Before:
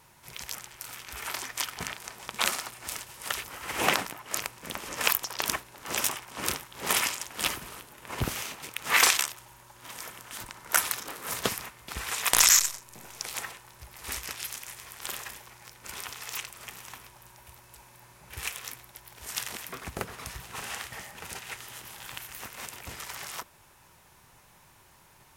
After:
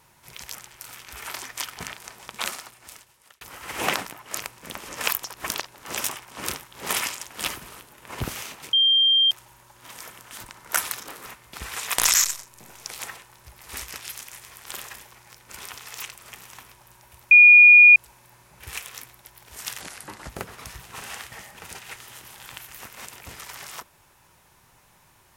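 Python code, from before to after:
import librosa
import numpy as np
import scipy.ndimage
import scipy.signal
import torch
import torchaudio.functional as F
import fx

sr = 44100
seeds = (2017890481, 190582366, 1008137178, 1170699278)

y = fx.edit(x, sr, fx.fade_out_span(start_s=2.12, length_s=1.29),
    fx.reverse_span(start_s=5.34, length_s=0.32),
    fx.bleep(start_s=8.73, length_s=0.58, hz=3180.0, db=-15.0),
    fx.cut(start_s=11.26, length_s=0.35),
    fx.insert_tone(at_s=17.66, length_s=0.65, hz=2440.0, db=-7.0),
    fx.speed_span(start_s=19.51, length_s=0.39, speed=0.8), tone=tone)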